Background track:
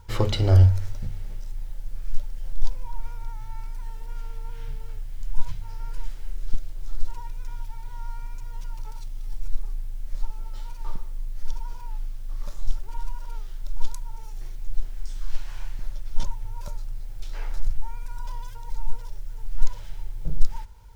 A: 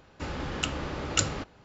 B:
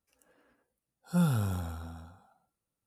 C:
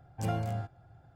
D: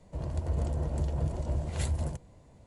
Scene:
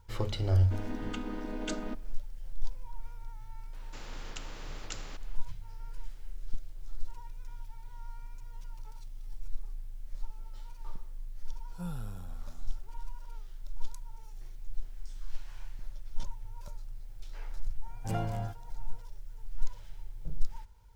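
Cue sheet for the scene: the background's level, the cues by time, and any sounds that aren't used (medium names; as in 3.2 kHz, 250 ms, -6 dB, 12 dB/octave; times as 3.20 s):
background track -10 dB
0.50 s: add A -5 dB + vocoder on a held chord minor triad, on G#3
3.73 s: add A -16.5 dB + spectrum-flattening compressor 2:1
10.65 s: add B -13 dB
17.86 s: add C -1.5 dB
not used: D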